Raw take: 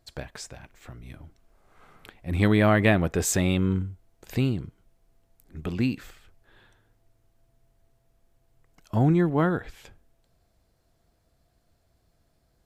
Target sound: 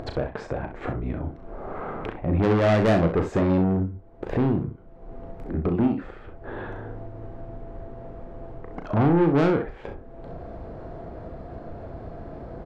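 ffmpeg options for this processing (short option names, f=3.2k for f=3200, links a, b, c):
-filter_complex "[0:a]lowpass=1.4k,equalizer=f=440:w=0.48:g=9,acompressor=mode=upward:threshold=-19dB:ratio=2.5,asoftclip=type=tanh:threshold=-18.5dB,asplit=2[a][b];[b]aecho=0:1:36|65:0.422|0.316[c];[a][c]amix=inputs=2:normalize=0,volume=1.5dB"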